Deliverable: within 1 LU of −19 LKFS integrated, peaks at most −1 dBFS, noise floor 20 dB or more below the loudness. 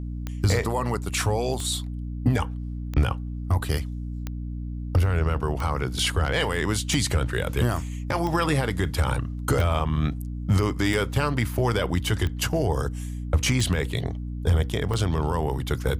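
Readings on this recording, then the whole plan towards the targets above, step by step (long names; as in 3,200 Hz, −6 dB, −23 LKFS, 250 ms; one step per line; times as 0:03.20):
number of clicks 12; mains hum 60 Hz; hum harmonics up to 300 Hz; level of the hum −29 dBFS; integrated loudness −25.5 LKFS; sample peak −9.0 dBFS; target loudness −19.0 LKFS
→ click removal
mains-hum notches 60/120/180/240/300 Hz
level +6.5 dB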